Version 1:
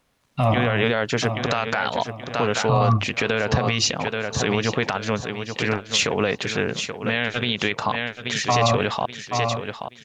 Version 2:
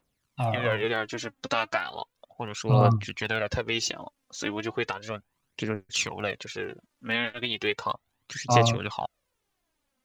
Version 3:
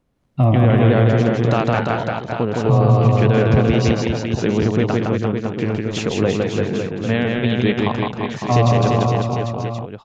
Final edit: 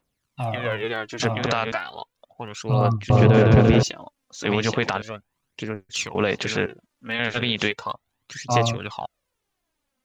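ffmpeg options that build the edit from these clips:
-filter_complex "[0:a]asplit=4[s0][s1][s2][s3];[1:a]asplit=6[s4][s5][s6][s7][s8][s9];[s4]atrim=end=1.202[s10];[s0]atrim=start=1.198:end=1.722[s11];[s5]atrim=start=1.718:end=3.102[s12];[2:a]atrim=start=3.098:end=3.832[s13];[s6]atrim=start=3.828:end=4.452[s14];[s1]atrim=start=4.448:end=5.022[s15];[s7]atrim=start=5.018:end=6.152[s16];[s2]atrim=start=6.148:end=6.662[s17];[s8]atrim=start=6.658:end=7.192[s18];[s3]atrim=start=7.188:end=7.712[s19];[s9]atrim=start=7.708[s20];[s10][s11]acrossfade=d=0.004:c1=hsin:c2=hsin[s21];[s21][s12]acrossfade=d=0.004:c1=hsin:c2=hsin[s22];[s22][s13]acrossfade=d=0.004:c1=hsin:c2=hsin[s23];[s23][s14]acrossfade=d=0.004:c1=hsin:c2=hsin[s24];[s24][s15]acrossfade=d=0.004:c1=hsin:c2=hsin[s25];[s25][s16]acrossfade=d=0.004:c1=hsin:c2=hsin[s26];[s26][s17]acrossfade=d=0.004:c1=hsin:c2=hsin[s27];[s27][s18]acrossfade=d=0.004:c1=hsin:c2=hsin[s28];[s28][s19]acrossfade=d=0.004:c1=hsin:c2=hsin[s29];[s29][s20]acrossfade=d=0.004:c1=hsin:c2=hsin"

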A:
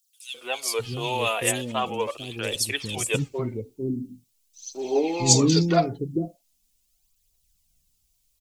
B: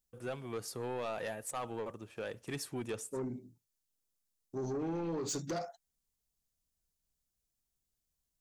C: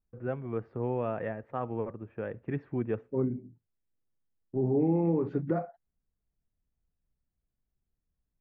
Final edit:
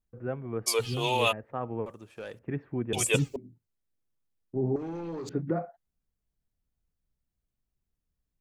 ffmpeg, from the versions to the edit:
-filter_complex "[0:a]asplit=2[s0][s1];[1:a]asplit=2[s2][s3];[2:a]asplit=5[s4][s5][s6][s7][s8];[s4]atrim=end=0.68[s9];[s0]atrim=start=0.66:end=1.33[s10];[s5]atrim=start=1.31:end=1.862[s11];[s2]atrim=start=1.858:end=2.392[s12];[s6]atrim=start=2.388:end=2.932[s13];[s1]atrim=start=2.928:end=3.362[s14];[s7]atrim=start=3.358:end=4.762[s15];[s3]atrim=start=4.758:end=5.292[s16];[s8]atrim=start=5.288[s17];[s9][s10]acrossfade=d=0.02:c1=tri:c2=tri[s18];[s18][s11]acrossfade=d=0.02:c1=tri:c2=tri[s19];[s19][s12]acrossfade=d=0.004:c1=hsin:c2=hsin[s20];[s20][s13]acrossfade=d=0.004:c1=hsin:c2=hsin[s21];[s21][s14]acrossfade=d=0.004:c1=hsin:c2=hsin[s22];[s22][s15]acrossfade=d=0.004:c1=hsin:c2=hsin[s23];[s23][s16]acrossfade=d=0.004:c1=hsin:c2=hsin[s24];[s24][s17]acrossfade=d=0.004:c1=hsin:c2=hsin"

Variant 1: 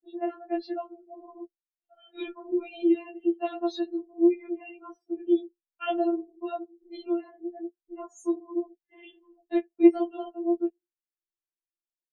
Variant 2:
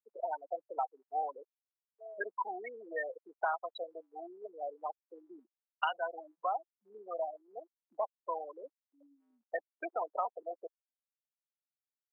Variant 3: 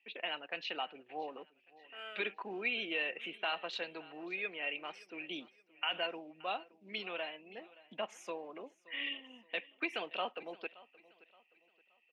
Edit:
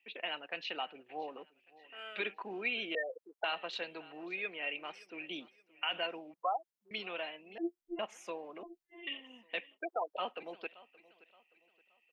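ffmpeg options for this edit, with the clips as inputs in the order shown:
-filter_complex "[1:a]asplit=3[s0][s1][s2];[0:a]asplit=2[s3][s4];[2:a]asplit=6[s5][s6][s7][s8][s9][s10];[s5]atrim=end=2.952[s11];[s0]atrim=start=2.948:end=3.442[s12];[s6]atrim=start=3.438:end=6.342[s13];[s1]atrim=start=6.338:end=6.912[s14];[s7]atrim=start=6.908:end=7.582[s15];[s3]atrim=start=7.578:end=7.992[s16];[s8]atrim=start=7.988:end=8.632[s17];[s4]atrim=start=8.628:end=9.072[s18];[s9]atrim=start=9.068:end=9.79[s19];[s2]atrim=start=9.73:end=10.22[s20];[s10]atrim=start=10.16[s21];[s11][s12]acrossfade=d=0.004:c1=hsin:c2=hsin[s22];[s22][s13]acrossfade=d=0.004:c1=hsin:c2=hsin[s23];[s23][s14]acrossfade=d=0.004:c1=hsin:c2=hsin[s24];[s24][s15]acrossfade=d=0.004:c1=hsin:c2=hsin[s25];[s25][s16]acrossfade=d=0.004:c1=hsin:c2=hsin[s26];[s26][s17]acrossfade=d=0.004:c1=hsin:c2=hsin[s27];[s27][s18]acrossfade=d=0.004:c1=hsin:c2=hsin[s28];[s28][s19]acrossfade=d=0.004:c1=hsin:c2=hsin[s29];[s29][s20]acrossfade=d=0.06:c1=tri:c2=tri[s30];[s30][s21]acrossfade=d=0.06:c1=tri:c2=tri"

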